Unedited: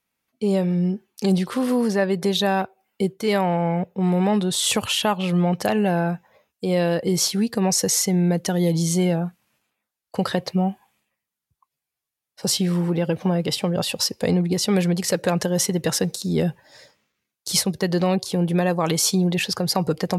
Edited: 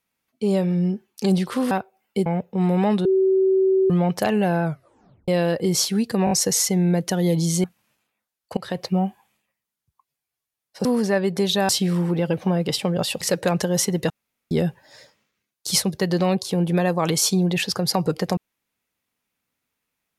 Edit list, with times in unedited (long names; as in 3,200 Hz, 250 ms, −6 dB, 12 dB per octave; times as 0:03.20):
0:01.71–0:02.55: move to 0:12.48
0:03.10–0:03.69: remove
0:04.48–0:05.33: beep over 381 Hz −14.5 dBFS
0:06.07: tape stop 0.64 s
0:07.68: stutter 0.02 s, 4 plays
0:09.01–0:09.27: remove
0:10.20–0:10.62: fade in equal-power, from −22.5 dB
0:14.00–0:15.02: remove
0:15.91–0:16.32: fill with room tone